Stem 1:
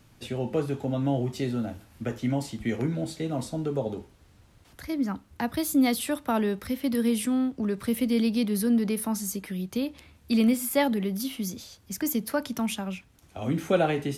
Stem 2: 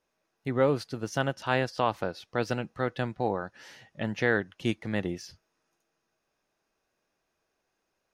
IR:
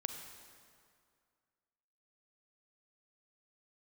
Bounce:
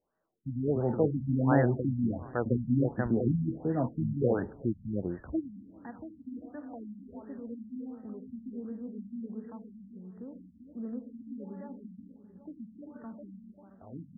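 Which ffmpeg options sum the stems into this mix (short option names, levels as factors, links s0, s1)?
-filter_complex "[0:a]adelay=450,volume=0.944,asplit=3[s0][s1][s2];[s1]volume=0.158[s3];[s2]volume=0.0631[s4];[1:a]volume=0.794,asplit=3[s5][s6][s7];[s6]volume=0.0708[s8];[s7]apad=whole_len=645156[s9];[s0][s9]sidechaingate=range=0.0224:threshold=0.00141:ratio=16:detection=peak[s10];[2:a]atrim=start_sample=2205[s11];[s3][s11]afir=irnorm=-1:irlink=0[s12];[s4][s8]amix=inputs=2:normalize=0,aecho=0:1:394|788|1182|1576|1970|2364:1|0.43|0.185|0.0795|0.0342|0.0147[s13];[s10][s5][s12][s13]amix=inputs=4:normalize=0,afftfilt=real='re*lt(b*sr/1024,250*pow(2000/250,0.5+0.5*sin(2*PI*1.4*pts/sr)))':imag='im*lt(b*sr/1024,250*pow(2000/250,0.5+0.5*sin(2*PI*1.4*pts/sr)))':win_size=1024:overlap=0.75"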